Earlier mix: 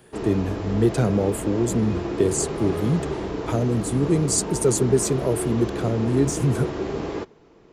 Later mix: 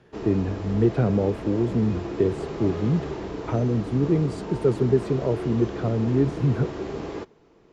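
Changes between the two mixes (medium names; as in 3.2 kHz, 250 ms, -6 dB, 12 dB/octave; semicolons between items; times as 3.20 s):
speech: add distance through air 450 m; background -4.0 dB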